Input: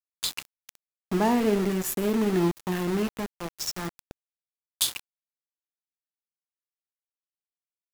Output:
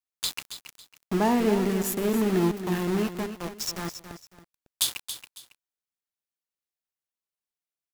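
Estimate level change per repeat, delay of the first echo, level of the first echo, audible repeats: -11.0 dB, 276 ms, -10.5 dB, 2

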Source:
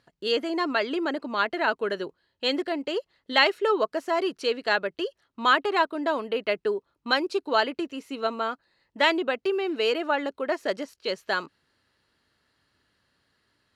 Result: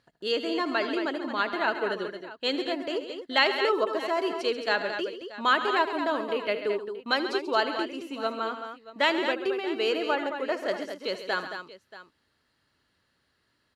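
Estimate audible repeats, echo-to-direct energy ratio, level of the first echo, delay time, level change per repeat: 4, -5.5 dB, -14.5 dB, 76 ms, no regular repeats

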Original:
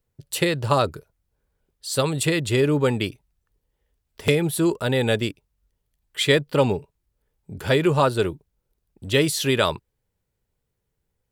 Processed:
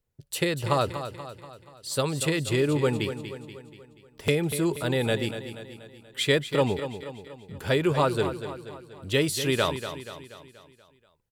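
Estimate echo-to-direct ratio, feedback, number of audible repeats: -9.0 dB, 52%, 5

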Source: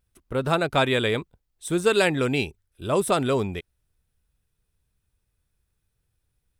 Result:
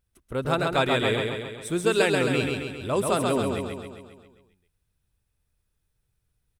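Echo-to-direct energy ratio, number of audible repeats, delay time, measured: -2.0 dB, 7, 134 ms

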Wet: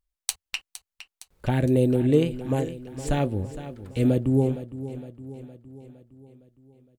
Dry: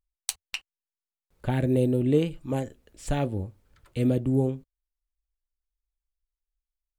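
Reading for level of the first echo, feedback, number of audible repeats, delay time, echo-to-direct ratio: -13.5 dB, 55%, 5, 462 ms, -12.0 dB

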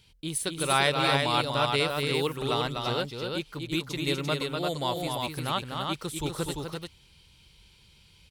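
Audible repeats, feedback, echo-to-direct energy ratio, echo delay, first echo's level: 2, no regular repeats, -1.5 dB, 246 ms, -5.0 dB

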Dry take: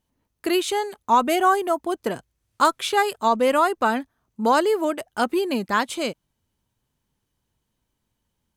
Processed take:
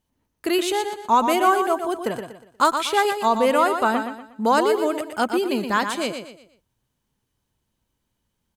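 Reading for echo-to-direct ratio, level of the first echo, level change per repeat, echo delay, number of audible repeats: -7.0 dB, -7.5 dB, -9.0 dB, 120 ms, 4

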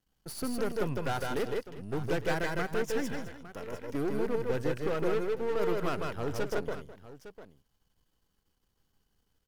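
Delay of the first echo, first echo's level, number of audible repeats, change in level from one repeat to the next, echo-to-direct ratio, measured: 157 ms, -2.5 dB, 3, no regular repeats, -2.0 dB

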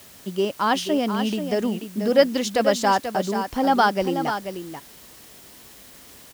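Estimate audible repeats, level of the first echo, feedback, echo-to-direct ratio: 1, -8.5 dB, no regular repeats, -8.5 dB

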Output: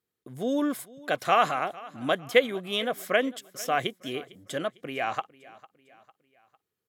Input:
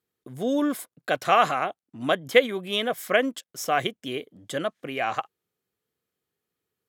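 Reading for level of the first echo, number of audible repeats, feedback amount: -21.0 dB, 3, 47%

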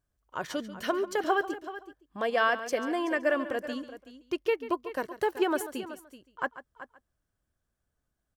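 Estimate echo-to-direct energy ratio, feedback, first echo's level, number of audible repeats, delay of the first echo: -11.0 dB, no regular repeats, -14.5 dB, 3, 140 ms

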